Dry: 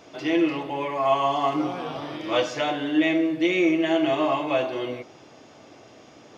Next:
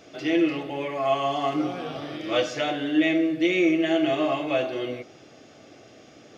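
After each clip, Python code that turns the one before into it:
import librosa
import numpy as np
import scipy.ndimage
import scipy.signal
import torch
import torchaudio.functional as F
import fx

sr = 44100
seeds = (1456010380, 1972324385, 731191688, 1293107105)

y = fx.peak_eq(x, sr, hz=960.0, db=-14.5, octaves=0.27)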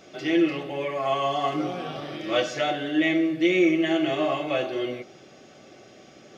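y = x + 0.38 * np.pad(x, (int(5.3 * sr / 1000.0), 0))[:len(x)]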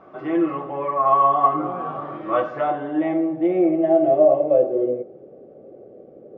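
y = fx.filter_sweep_lowpass(x, sr, from_hz=1100.0, to_hz=490.0, start_s=2.55, end_s=4.84, q=4.9)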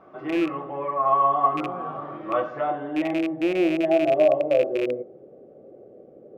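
y = fx.rattle_buzz(x, sr, strikes_db=-29.0, level_db=-19.0)
y = F.gain(torch.from_numpy(y), -3.5).numpy()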